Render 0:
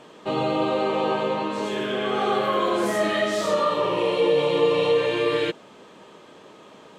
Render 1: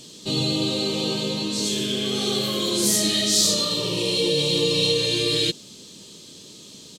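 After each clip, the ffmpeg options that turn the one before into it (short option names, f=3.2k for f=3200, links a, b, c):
-af "firequalizer=gain_entry='entry(100,0);entry(710,-22);entry(1400,-21);entry(4200,10)':delay=0.05:min_phase=1,volume=8.5dB"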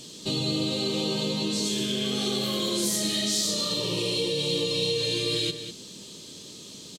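-filter_complex "[0:a]acompressor=threshold=-26dB:ratio=3,asplit=2[a][b];[b]adelay=198.3,volume=-9dB,highshelf=f=4k:g=-4.46[c];[a][c]amix=inputs=2:normalize=0"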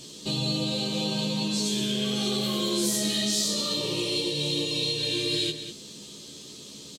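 -filter_complex "[0:a]asplit=2[a][b];[b]adelay=14,volume=-4.5dB[c];[a][c]amix=inputs=2:normalize=0,volume=-1.5dB"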